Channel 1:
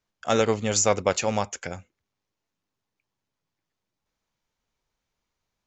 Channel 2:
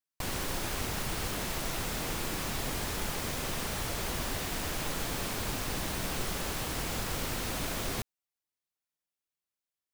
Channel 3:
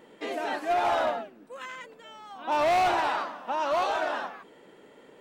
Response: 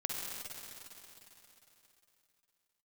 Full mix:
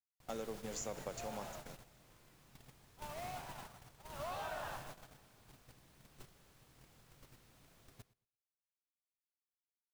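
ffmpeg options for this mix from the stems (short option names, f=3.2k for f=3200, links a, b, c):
-filter_complex "[0:a]highpass=f=160:w=0.5412,highpass=f=160:w=1.3066,equalizer=f=2.4k:t=o:w=2.2:g=-7.5,volume=-10dB,asplit=2[a][b];[b]volume=-12.5dB[c];[1:a]equalizer=f=130:t=o:w=0.47:g=9,volume=-8.5dB,asplit=2[d][e];[e]volume=-12dB[f];[2:a]highpass=f=470:w=0.5412,highpass=f=470:w=1.3066,adelay=500,volume=-7dB,afade=t=in:st=4.1:d=0.33:silence=0.281838,asplit=2[g][h];[h]volume=-6dB[i];[3:a]atrim=start_sample=2205[j];[c][i]amix=inputs=2:normalize=0[k];[k][j]afir=irnorm=-1:irlink=0[l];[f]aecho=0:1:115|230|345:1|0.17|0.0289[m];[a][d][g][l][m]amix=inputs=5:normalize=0,agate=range=-24dB:threshold=-36dB:ratio=16:detection=peak,acompressor=threshold=-46dB:ratio=2.5"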